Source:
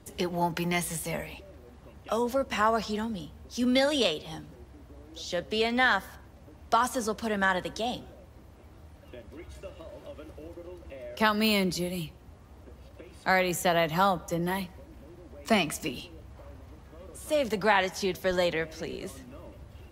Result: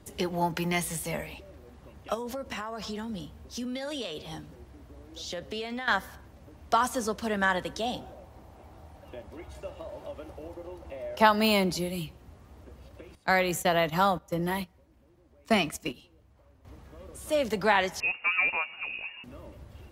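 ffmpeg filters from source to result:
-filter_complex "[0:a]asettb=1/sr,asplit=3[s0][s1][s2];[s0]atrim=end=2.144[s3];[s1]atrim=start=2.14:end=5.88,asetpts=PTS-STARTPTS,afade=t=in:d=0.004:c=qsin,afade=t=out:st=3.736:d=0.004:c=qsin,acompressor=threshold=0.0282:ratio=12:attack=3.2:release=140:knee=1:detection=peak[s4];[s2]atrim=start=5.876[s5];[s3][s4]acrossfade=d=0.004:c1=hsin:c2=qsin[s6];[s6][s5]acrossfade=d=0.004:c1=qsin:c2=hsin,asettb=1/sr,asplit=3[s7][s8][s9];[s7]atrim=end=7.944[s10];[s8]atrim=start=7.94:end=11.79,asetpts=PTS-STARTPTS,afade=t=in:d=0.004:c=qsin,afade=t=out:st=3.846:d=0.004:c=qsin,equalizer=f=780:t=o:w=0.77:g=9[s11];[s9]atrim=start=11.786[s12];[s10][s11]acrossfade=d=0.004:c1=hsin:c2=qsin[s13];[s13][s12]acrossfade=d=0.004:c1=qsin:c2=hsin,asettb=1/sr,asplit=3[s14][s15][s16];[s14]atrim=end=13.154[s17];[s15]atrim=start=13.15:end=16.65,asetpts=PTS-STARTPTS,afade=t=in:d=0.004:c=qsin,afade=t=out:st=3.496:d=0.004:c=qsin,agate=range=0.224:threshold=0.0178:ratio=16:release=100:detection=peak[s18];[s16]atrim=start=16.646[s19];[s17][s18]acrossfade=d=0.004:c1=hsin:c2=qsin[s20];[s20][s19]acrossfade=d=0.004:c1=qsin:c2=hsin,asettb=1/sr,asplit=3[s21][s22][s23];[s21]atrim=end=18.004[s24];[s22]atrim=start=18:end=19.24,asetpts=PTS-STARTPTS,afade=t=in:d=0.004:c=qsin,afade=t=out:st=1.236:d=0.004:c=qsin,lowpass=f=2500:t=q:w=0.5098,lowpass=f=2500:t=q:w=0.6013,lowpass=f=2500:t=q:w=0.9,lowpass=f=2500:t=q:w=2.563,afreqshift=-2900[s25];[s23]atrim=start=19.236[s26];[s24][s25]acrossfade=d=0.004:c1=hsin:c2=qsin[s27];[s27][s26]acrossfade=d=0.004:c1=qsin:c2=hsin"

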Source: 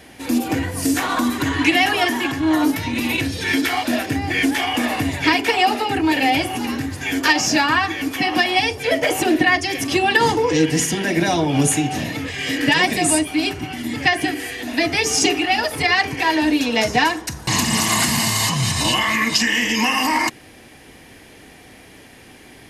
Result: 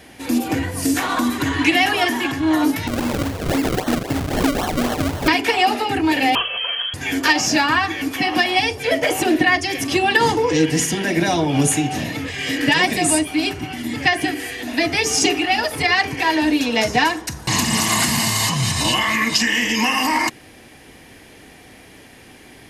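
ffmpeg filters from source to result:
-filter_complex "[0:a]asettb=1/sr,asplit=3[s0][s1][s2];[s0]atrim=end=2.874[s3];[s1]atrim=start=2.87:end=5.28,asetpts=PTS-STARTPTS,afade=t=in:d=0.004:c=qsin,afade=t=out:st=2.406:d=0.004:c=qsin,acrusher=samples=35:mix=1:aa=0.000001:lfo=1:lforange=35:lforate=3.8[s4];[s2]atrim=start=5.276[s5];[s3][s4]acrossfade=d=0.004:c1=hsin:c2=qsin[s6];[s6][s5]acrossfade=d=0.004:c1=qsin:c2=hsin,asettb=1/sr,asplit=3[s7][s8][s9];[s7]atrim=end=6.354[s10];[s8]atrim=start=6.35:end=6.94,asetpts=PTS-STARTPTS,afade=t=in:d=0.004:c=qsin,afade=t=out:st=0.586:d=0.004:c=qsin,lowpass=f=2900:t=q:w=0.5098,lowpass=f=2900:t=q:w=0.6013,lowpass=f=2900:t=q:w=0.9,lowpass=f=2900:t=q:w=2.563,afreqshift=-3400[s11];[s9]atrim=start=6.936[s12];[s10][s11]acrossfade=d=0.004:c1=hsin:c2=qsin[s13];[s13][s12]acrossfade=d=0.004:c1=qsin:c2=hsin"

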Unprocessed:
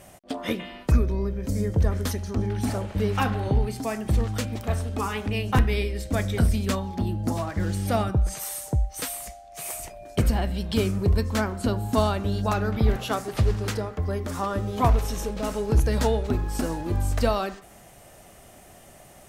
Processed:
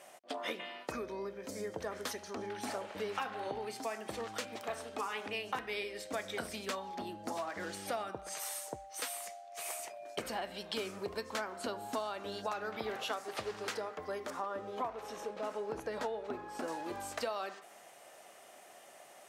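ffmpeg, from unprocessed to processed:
-filter_complex "[0:a]asettb=1/sr,asplit=3[s0][s1][s2];[s0]atrim=end=14.304[s3];[s1]atrim=start=14.3:end=16.68,asetpts=PTS-STARTPTS,afade=t=in:d=0.004:c=qsin,afade=t=out:st=2.376:d=0.004:c=qsin,highshelf=f=2500:g=-11.5[s4];[s2]atrim=start=16.676[s5];[s3][s4]acrossfade=d=0.004:c1=hsin:c2=qsin[s6];[s6][s5]acrossfade=d=0.004:c1=qsin:c2=hsin,highpass=510,highshelf=f=9500:g=-10,acompressor=threshold=0.0282:ratio=6,volume=0.708"

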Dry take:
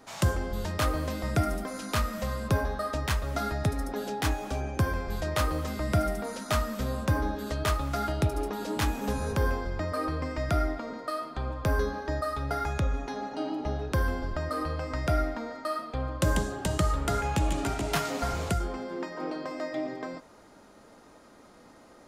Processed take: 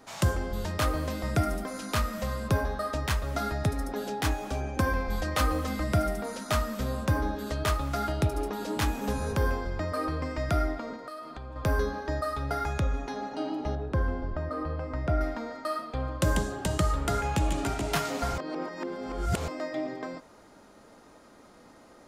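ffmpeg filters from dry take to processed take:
-filter_complex "[0:a]asettb=1/sr,asplit=3[s0][s1][s2];[s0]atrim=end=4.764[s3];[s1]atrim=start=4.76:end=5.84,asetpts=PTS-STARTPTS,afade=t=in:d=0.004:c=qsin,afade=t=out:st=1.076:d=0.004:c=qsin,aecho=1:1:3.9:0.65,atrim=end_sample=47628[s4];[s2]atrim=start=5.836[s5];[s3][s4]acrossfade=d=0.004:c1=hsin:c2=qsin[s6];[s6][s5]acrossfade=d=0.004:c1=qsin:c2=hsin,asettb=1/sr,asplit=3[s7][s8][s9];[s7]atrim=end=10.954[s10];[s8]atrim=start=10.95:end=11.56,asetpts=PTS-STARTPTS,afade=t=in:d=0.004:c=qsin,afade=t=out:st=0.606:d=0.004:c=qsin,acompressor=threshold=0.0126:ratio=4:attack=3.2:release=140:knee=1:detection=peak[s11];[s9]atrim=start=11.556[s12];[s10][s11]acrossfade=d=0.004:c1=hsin:c2=qsin[s13];[s13][s12]acrossfade=d=0.004:c1=qsin:c2=hsin,asettb=1/sr,asplit=3[s14][s15][s16];[s14]atrim=end=13.754[s17];[s15]atrim=start=13.75:end=15.21,asetpts=PTS-STARTPTS,afade=t=in:d=0.004:c=qsin,afade=t=out:st=1.456:d=0.004:c=qsin,lowpass=f=1100:p=1[s18];[s16]atrim=start=15.206[s19];[s17][s18]acrossfade=d=0.004:c1=hsin:c2=qsin[s20];[s20][s19]acrossfade=d=0.004:c1=qsin:c2=hsin,asplit=3[s21][s22][s23];[s21]atrim=end=18.382[s24];[s22]atrim=start=18.378:end=19.482,asetpts=PTS-STARTPTS,areverse[s25];[s23]atrim=start=19.478[s26];[s24][s25]acrossfade=d=0.004:c1=hsin:c2=hsin[s27];[s27][s26]acrossfade=d=0.004:c1=hsin:c2=hsin"

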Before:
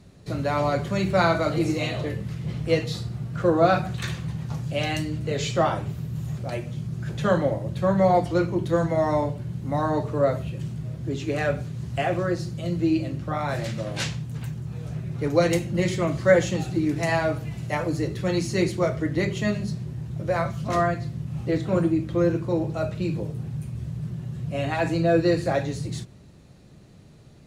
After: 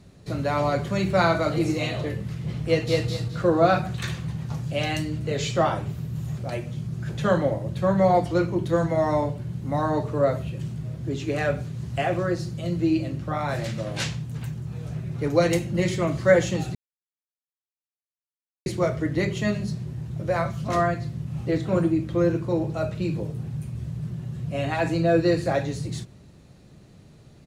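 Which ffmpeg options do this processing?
-filter_complex "[0:a]asplit=2[s0][s1];[s1]afade=t=in:st=2.66:d=0.01,afade=t=out:st=3.07:d=0.01,aecho=0:1:210|420|630|840:0.841395|0.210349|0.0525872|0.0131468[s2];[s0][s2]amix=inputs=2:normalize=0,asplit=3[s3][s4][s5];[s3]atrim=end=16.75,asetpts=PTS-STARTPTS,afade=t=out:st=16.746:d=0.004:c=hsin[s6];[s4]atrim=start=16.75:end=18.66,asetpts=PTS-STARTPTS,volume=0[s7];[s5]atrim=start=18.66,asetpts=PTS-STARTPTS,afade=t=in:d=0.004:c=hsin[s8];[s6][s7][s8]concat=n=3:v=0:a=1"

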